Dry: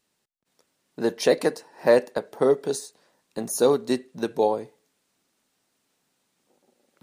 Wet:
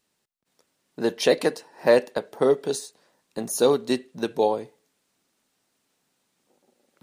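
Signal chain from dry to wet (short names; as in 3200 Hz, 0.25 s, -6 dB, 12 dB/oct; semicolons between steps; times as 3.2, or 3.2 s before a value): dynamic EQ 3100 Hz, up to +6 dB, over -49 dBFS, Q 1.8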